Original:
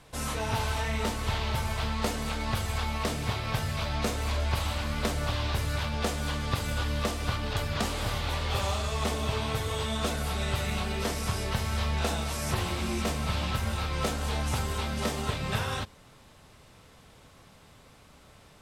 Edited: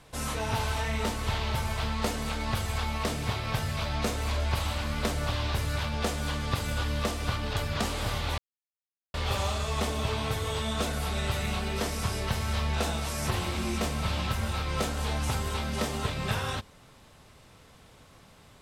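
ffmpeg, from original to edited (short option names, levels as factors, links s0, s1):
-filter_complex "[0:a]asplit=2[s0][s1];[s0]atrim=end=8.38,asetpts=PTS-STARTPTS,afade=t=out:st=8.376:d=0.004:c=hsin,apad=pad_dur=0.76[s2];[s1]atrim=start=8.38,asetpts=PTS-STARTPTS,afade=t=in:d=0.004:c=hsin[s3];[s2][s3]concat=n=2:v=0:a=1"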